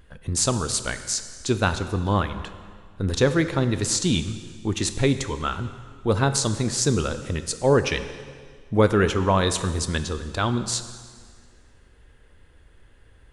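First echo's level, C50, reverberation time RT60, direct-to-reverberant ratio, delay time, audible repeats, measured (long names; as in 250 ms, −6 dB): no echo audible, 11.0 dB, 1.9 s, 10.0 dB, no echo audible, no echo audible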